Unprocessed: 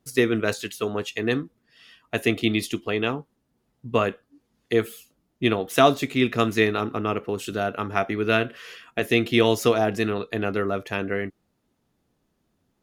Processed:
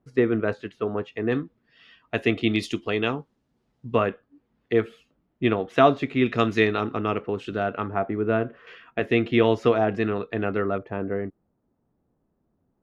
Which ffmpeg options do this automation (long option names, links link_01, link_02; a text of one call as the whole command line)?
ffmpeg -i in.wav -af "asetnsamples=nb_out_samples=441:pad=0,asendcmd='1.32 lowpass f 3300;2.56 lowpass f 6000;3.95 lowpass f 2400;6.26 lowpass f 4300;7.22 lowpass f 2600;7.9 lowpass f 1100;8.67 lowpass f 2300;10.78 lowpass f 1000',lowpass=1500" out.wav